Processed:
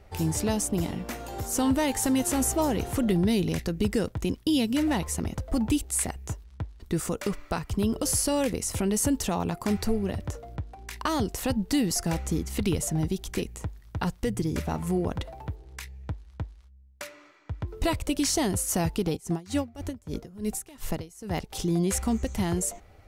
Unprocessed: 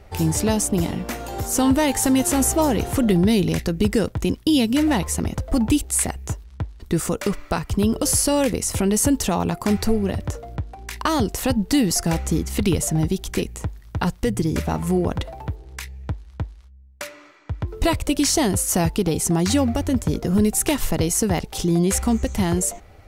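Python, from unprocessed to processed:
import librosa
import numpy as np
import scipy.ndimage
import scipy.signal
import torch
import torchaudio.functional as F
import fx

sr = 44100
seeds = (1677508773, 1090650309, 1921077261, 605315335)

y = fx.tremolo_db(x, sr, hz=fx.line((19.15, 4.4), (21.49, 1.9)), depth_db=23, at=(19.15, 21.49), fade=0.02)
y = y * 10.0 ** (-6.5 / 20.0)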